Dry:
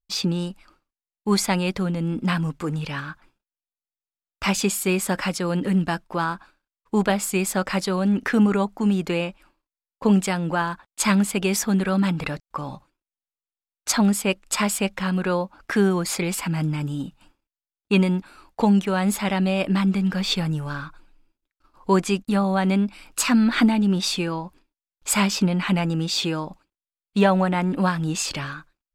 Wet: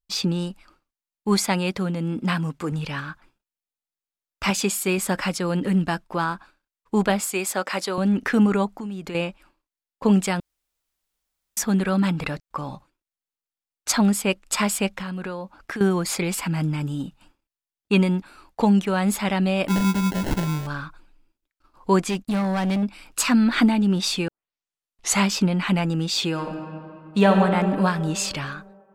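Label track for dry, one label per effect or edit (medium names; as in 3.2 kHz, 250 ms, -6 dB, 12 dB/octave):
1.390000	2.720000	high-pass 100 Hz 6 dB/octave
4.500000	4.980000	bass shelf 94 Hz -11 dB
7.200000	7.980000	high-pass 330 Hz
8.730000	9.150000	compression 5:1, threshold -30 dBFS
10.400000	11.570000	room tone
14.930000	15.810000	compression 12:1, threshold -27 dBFS
19.680000	20.670000	sample-rate reducer 1.2 kHz
22.050000	22.830000	overload inside the chain gain 20 dB
24.280000	24.280000	tape start 0.94 s
26.290000	27.340000	reverb throw, RT60 2.6 s, DRR 3 dB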